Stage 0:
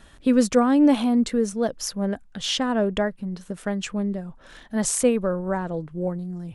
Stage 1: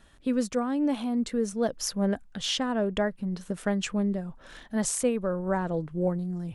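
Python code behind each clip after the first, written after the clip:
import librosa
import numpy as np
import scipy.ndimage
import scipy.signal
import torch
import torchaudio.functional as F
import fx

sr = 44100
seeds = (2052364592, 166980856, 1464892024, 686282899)

y = fx.rider(x, sr, range_db=5, speed_s=0.5)
y = y * librosa.db_to_amplitude(-5.0)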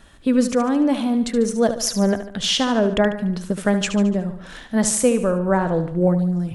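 y = fx.echo_feedback(x, sr, ms=73, feedback_pct=49, wet_db=-10.5)
y = y * librosa.db_to_amplitude(8.5)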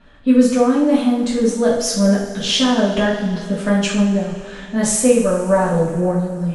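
y = fx.env_lowpass(x, sr, base_hz=3000.0, full_db=-16.0)
y = fx.rev_double_slope(y, sr, seeds[0], early_s=0.49, late_s=3.4, knee_db=-18, drr_db=-7.0)
y = y * librosa.db_to_amplitude(-5.0)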